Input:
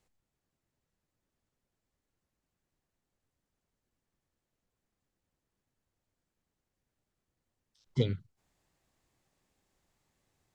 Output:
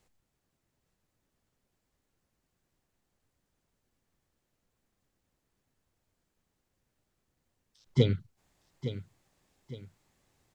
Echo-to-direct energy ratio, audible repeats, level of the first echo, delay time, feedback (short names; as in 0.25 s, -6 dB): -11.0 dB, 2, -11.5 dB, 0.862 s, 37%